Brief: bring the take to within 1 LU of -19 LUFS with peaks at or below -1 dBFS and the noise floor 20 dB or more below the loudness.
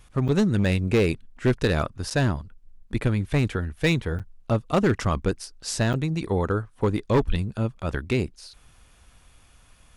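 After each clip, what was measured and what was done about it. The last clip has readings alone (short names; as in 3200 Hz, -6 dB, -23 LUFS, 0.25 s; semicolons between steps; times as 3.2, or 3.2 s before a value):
clipped 1.1%; flat tops at -14.5 dBFS; dropouts 4; longest dropout 7.5 ms; loudness -25.5 LUFS; peak -14.5 dBFS; loudness target -19.0 LUFS
-> clip repair -14.5 dBFS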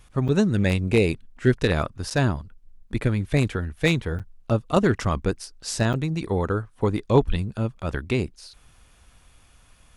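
clipped 0.0%; dropouts 4; longest dropout 7.5 ms
-> interpolate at 0.28/2.1/4.19/5.93, 7.5 ms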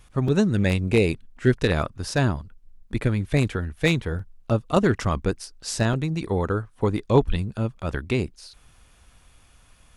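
dropouts 0; loudness -24.5 LUFS; peak -5.5 dBFS; loudness target -19.0 LUFS
-> gain +5.5 dB; limiter -1 dBFS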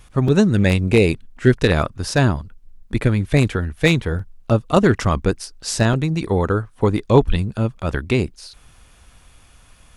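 loudness -19.0 LUFS; peak -1.0 dBFS; noise floor -51 dBFS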